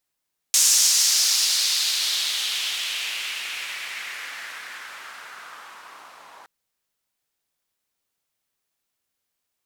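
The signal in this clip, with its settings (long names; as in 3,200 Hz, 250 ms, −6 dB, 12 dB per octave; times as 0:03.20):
filter sweep on noise white, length 5.92 s bandpass, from 6,600 Hz, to 920 Hz, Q 2.2, exponential, gain ramp −23 dB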